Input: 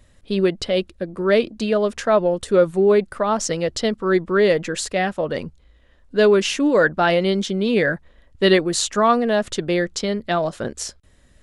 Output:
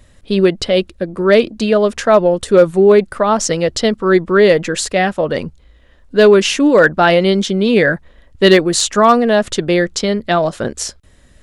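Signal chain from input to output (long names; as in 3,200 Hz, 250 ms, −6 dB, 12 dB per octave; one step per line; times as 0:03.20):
hard clipping −8 dBFS, distortion −31 dB
level +6.5 dB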